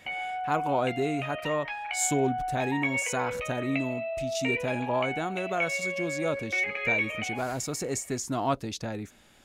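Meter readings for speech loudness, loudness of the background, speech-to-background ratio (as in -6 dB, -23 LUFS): -31.5 LUFS, -31.5 LUFS, 0.0 dB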